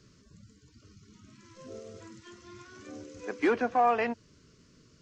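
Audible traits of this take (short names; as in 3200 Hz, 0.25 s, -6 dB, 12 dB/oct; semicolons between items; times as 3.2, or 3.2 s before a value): noise floor -61 dBFS; spectral tilt 0.0 dB/oct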